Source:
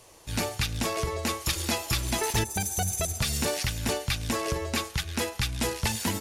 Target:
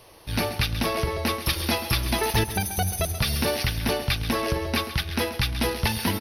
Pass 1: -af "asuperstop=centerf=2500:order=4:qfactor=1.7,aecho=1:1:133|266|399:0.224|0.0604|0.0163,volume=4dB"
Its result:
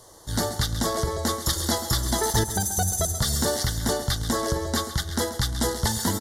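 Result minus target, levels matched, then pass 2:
8,000 Hz band +6.5 dB
-af "asuperstop=centerf=7400:order=4:qfactor=1.7,aecho=1:1:133|266|399:0.224|0.0604|0.0163,volume=4dB"

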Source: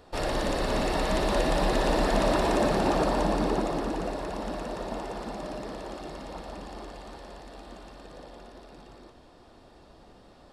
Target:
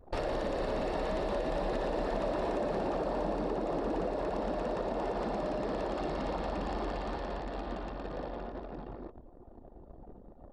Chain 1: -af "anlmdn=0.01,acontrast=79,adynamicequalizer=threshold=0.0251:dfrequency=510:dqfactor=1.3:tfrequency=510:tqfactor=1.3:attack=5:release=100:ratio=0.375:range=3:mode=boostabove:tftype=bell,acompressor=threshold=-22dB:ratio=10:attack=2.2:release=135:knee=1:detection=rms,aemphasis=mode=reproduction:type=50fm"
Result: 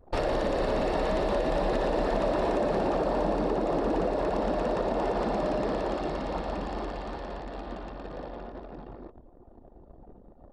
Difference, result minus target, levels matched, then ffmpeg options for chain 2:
downward compressor: peak gain reduction −6 dB
-af "anlmdn=0.01,acontrast=79,adynamicequalizer=threshold=0.0251:dfrequency=510:dqfactor=1.3:tfrequency=510:tqfactor=1.3:attack=5:release=100:ratio=0.375:range=3:mode=boostabove:tftype=bell,acompressor=threshold=-28.5dB:ratio=10:attack=2.2:release=135:knee=1:detection=rms,aemphasis=mode=reproduction:type=50fm"

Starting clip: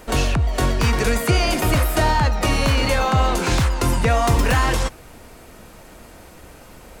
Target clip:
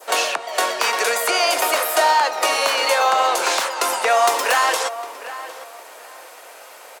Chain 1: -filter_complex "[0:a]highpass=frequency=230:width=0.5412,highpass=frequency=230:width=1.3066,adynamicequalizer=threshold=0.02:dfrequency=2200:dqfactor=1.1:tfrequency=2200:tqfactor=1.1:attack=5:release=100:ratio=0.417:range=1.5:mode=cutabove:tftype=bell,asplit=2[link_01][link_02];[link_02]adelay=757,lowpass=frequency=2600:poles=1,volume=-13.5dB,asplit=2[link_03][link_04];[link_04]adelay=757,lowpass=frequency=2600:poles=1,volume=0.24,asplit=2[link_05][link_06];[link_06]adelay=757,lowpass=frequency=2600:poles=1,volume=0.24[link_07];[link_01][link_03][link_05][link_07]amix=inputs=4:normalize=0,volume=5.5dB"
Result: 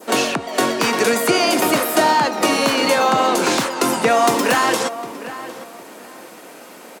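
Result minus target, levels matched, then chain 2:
250 Hz band +17.0 dB
-filter_complex "[0:a]highpass=frequency=530:width=0.5412,highpass=frequency=530:width=1.3066,adynamicequalizer=threshold=0.02:dfrequency=2200:dqfactor=1.1:tfrequency=2200:tqfactor=1.1:attack=5:release=100:ratio=0.417:range=1.5:mode=cutabove:tftype=bell,asplit=2[link_01][link_02];[link_02]adelay=757,lowpass=frequency=2600:poles=1,volume=-13.5dB,asplit=2[link_03][link_04];[link_04]adelay=757,lowpass=frequency=2600:poles=1,volume=0.24,asplit=2[link_05][link_06];[link_06]adelay=757,lowpass=frequency=2600:poles=1,volume=0.24[link_07];[link_01][link_03][link_05][link_07]amix=inputs=4:normalize=0,volume=5.5dB"

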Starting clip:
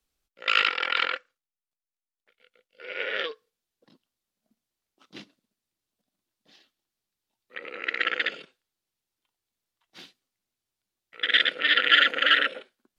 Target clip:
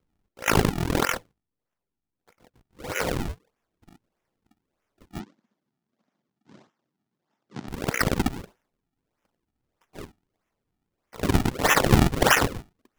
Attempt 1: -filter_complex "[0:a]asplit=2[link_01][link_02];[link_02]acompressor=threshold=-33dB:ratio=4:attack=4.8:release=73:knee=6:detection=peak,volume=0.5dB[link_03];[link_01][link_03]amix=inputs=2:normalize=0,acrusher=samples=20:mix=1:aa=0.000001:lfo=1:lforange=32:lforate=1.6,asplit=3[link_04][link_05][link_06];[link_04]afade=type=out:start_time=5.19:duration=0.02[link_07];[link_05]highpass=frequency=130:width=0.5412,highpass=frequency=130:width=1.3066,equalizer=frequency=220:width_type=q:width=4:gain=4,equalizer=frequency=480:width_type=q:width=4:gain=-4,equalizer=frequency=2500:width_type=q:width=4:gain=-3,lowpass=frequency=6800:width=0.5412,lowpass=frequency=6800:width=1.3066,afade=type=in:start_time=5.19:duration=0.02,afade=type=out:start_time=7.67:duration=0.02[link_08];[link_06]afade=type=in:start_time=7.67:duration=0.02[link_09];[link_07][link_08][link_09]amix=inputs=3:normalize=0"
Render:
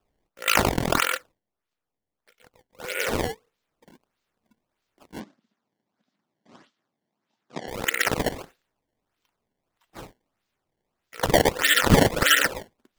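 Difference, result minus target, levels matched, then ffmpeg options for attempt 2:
sample-and-hold swept by an LFO: distortion −19 dB
-filter_complex "[0:a]asplit=2[link_01][link_02];[link_02]acompressor=threshold=-33dB:ratio=4:attack=4.8:release=73:knee=6:detection=peak,volume=0.5dB[link_03];[link_01][link_03]amix=inputs=2:normalize=0,acrusher=samples=48:mix=1:aa=0.000001:lfo=1:lforange=76.8:lforate=1.6,asplit=3[link_04][link_05][link_06];[link_04]afade=type=out:start_time=5.19:duration=0.02[link_07];[link_05]highpass=frequency=130:width=0.5412,highpass=frequency=130:width=1.3066,equalizer=frequency=220:width_type=q:width=4:gain=4,equalizer=frequency=480:width_type=q:width=4:gain=-4,equalizer=frequency=2500:width_type=q:width=4:gain=-3,lowpass=frequency=6800:width=0.5412,lowpass=frequency=6800:width=1.3066,afade=type=in:start_time=5.19:duration=0.02,afade=type=out:start_time=7.67:duration=0.02[link_08];[link_06]afade=type=in:start_time=7.67:duration=0.02[link_09];[link_07][link_08][link_09]amix=inputs=3:normalize=0"

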